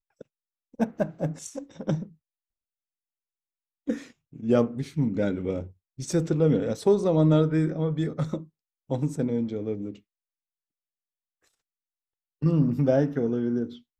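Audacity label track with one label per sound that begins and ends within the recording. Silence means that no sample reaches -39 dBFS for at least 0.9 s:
3.870000	9.960000	sound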